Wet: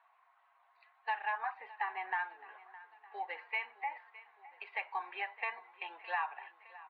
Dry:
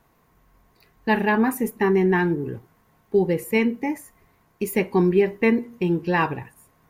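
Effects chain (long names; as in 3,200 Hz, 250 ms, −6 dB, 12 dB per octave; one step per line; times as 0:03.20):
spectral magnitudes quantised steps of 15 dB
Chebyshev band-pass filter 730–4,200 Hz, order 4
high-frequency loss of the air 390 metres
downward compressor 3 to 1, threshold −36 dBFS, peak gain reduction 11.5 dB
on a send: repeating echo 613 ms, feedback 60%, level −18.5 dB
on the sum: level +1 dB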